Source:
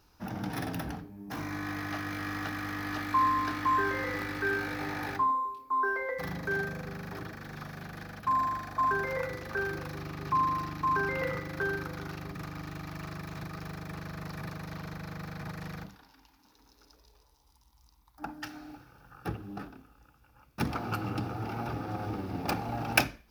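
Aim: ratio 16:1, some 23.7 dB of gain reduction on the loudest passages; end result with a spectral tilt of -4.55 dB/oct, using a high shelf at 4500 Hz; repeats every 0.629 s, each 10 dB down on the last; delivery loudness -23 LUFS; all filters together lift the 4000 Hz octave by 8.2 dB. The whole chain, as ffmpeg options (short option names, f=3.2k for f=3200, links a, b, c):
-af "equalizer=f=4k:t=o:g=6,highshelf=f=4.5k:g=8.5,acompressor=threshold=-37dB:ratio=16,aecho=1:1:629|1258|1887|2516:0.316|0.101|0.0324|0.0104,volume=18dB"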